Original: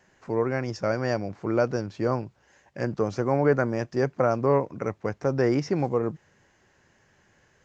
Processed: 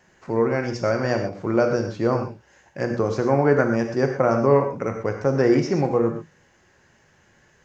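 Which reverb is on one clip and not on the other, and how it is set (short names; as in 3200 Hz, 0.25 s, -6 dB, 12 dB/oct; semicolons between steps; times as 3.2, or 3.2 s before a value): non-linear reverb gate 0.15 s flat, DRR 4 dB; gain +3 dB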